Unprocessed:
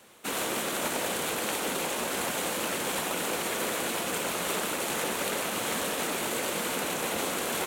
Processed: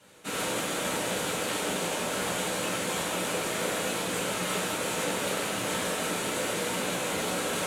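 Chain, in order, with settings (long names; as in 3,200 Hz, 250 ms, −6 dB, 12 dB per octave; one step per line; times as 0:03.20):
low-pass filter 11,000 Hz 12 dB per octave
reverb whose tail is shaped and stops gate 170 ms falling, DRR −6.5 dB
level −7 dB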